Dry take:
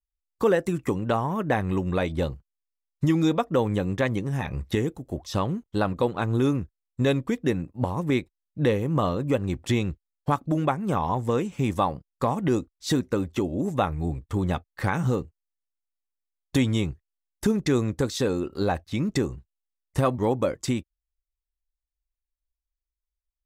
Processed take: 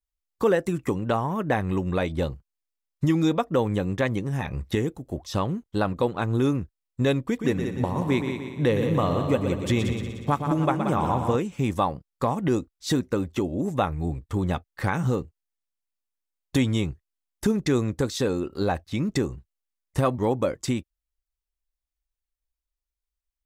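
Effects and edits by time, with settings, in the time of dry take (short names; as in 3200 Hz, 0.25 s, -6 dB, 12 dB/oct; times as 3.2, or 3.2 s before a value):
7.25–11.36 multi-head echo 60 ms, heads second and third, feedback 55%, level -8 dB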